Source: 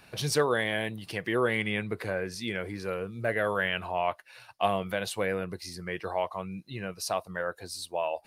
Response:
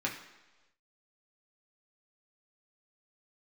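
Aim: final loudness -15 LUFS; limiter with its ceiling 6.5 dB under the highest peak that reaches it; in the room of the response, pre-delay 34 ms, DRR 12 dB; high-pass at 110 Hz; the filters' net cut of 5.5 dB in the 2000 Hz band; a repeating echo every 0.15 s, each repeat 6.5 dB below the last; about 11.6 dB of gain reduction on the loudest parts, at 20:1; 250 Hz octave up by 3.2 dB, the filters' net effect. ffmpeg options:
-filter_complex "[0:a]highpass=110,equalizer=f=250:t=o:g=5,equalizer=f=2k:t=o:g=-7,acompressor=threshold=-31dB:ratio=20,alimiter=level_in=3.5dB:limit=-24dB:level=0:latency=1,volume=-3.5dB,aecho=1:1:150|300|450|600|750|900:0.473|0.222|0.105|0.0491|0.0231|0.0109,asplit=2[a][b];[1:a]atrim=start_sample=2205,adelay=34[c];[b][c]afir=irnorm=-1:irlink=0,volume=-17.5dB[d];[a][d]amix=inputs=2:normalize=0,volume=23dB"

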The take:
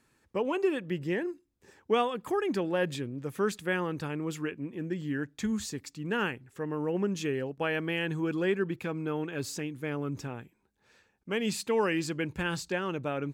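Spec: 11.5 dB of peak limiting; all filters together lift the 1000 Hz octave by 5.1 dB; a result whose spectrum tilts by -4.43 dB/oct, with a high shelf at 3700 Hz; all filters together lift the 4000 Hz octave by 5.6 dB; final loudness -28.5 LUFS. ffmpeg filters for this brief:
-af "equalizer=f=1k:t=o:g=6,highshelf=f=3.7k:g=4.5,equalizer=f=4k:t=o:g=4.5,volume=5dB,alimiter=limit=-18dB:level=0:latency=1"

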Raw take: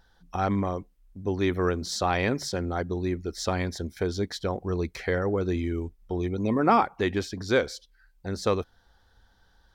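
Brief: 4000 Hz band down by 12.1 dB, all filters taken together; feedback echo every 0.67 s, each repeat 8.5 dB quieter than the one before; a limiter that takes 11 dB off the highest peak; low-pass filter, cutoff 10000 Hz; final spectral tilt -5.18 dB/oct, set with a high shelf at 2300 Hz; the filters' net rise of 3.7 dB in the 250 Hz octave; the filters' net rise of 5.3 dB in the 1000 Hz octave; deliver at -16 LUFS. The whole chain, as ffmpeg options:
-af "lowpass=10k,equalizer=f=250:t=o:g=4.5,equalizer=f=1k:t=o:g=9,highshelf=f=2.3k:g=-9,equalizer=f=4k:t=o:g=-7,alimiter=limit=-15dB:level=0:latency=1,aecho=1:1:670|1340|2010|2680:0.376|0.143|0.0543|0.0206,volume=11dB"

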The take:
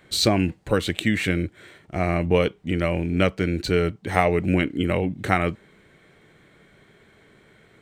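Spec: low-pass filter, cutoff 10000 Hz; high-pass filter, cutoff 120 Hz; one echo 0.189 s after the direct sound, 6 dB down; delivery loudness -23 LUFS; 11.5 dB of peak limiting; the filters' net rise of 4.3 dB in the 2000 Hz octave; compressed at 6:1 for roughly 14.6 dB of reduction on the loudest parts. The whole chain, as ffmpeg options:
-af "highpass=120,lowpass=10k,equalizer=f=2k:t=o:g=5,acompressor=threshold=-30dB:ratio=6,alimiter=level_in=1dB:limit=-24dB:level=0:latency=1,volume=-1dB,aecho=1:1:189:0.501,volume=13.5dB"

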